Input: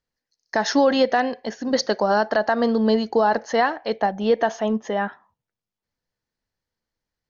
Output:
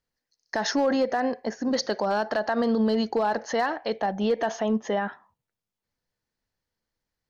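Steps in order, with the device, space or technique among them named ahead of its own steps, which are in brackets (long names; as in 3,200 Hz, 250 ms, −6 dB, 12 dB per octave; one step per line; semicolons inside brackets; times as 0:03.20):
0:00.71–0:01.71: parametric band 3,300 Hz −11.5 dB 0.78 octaves
clipper into limiter (hard clipping −10.5 dBFS, distortion −27 dB; brickwall limiter −16.5 dBFS, peak gain reduction 6 dB)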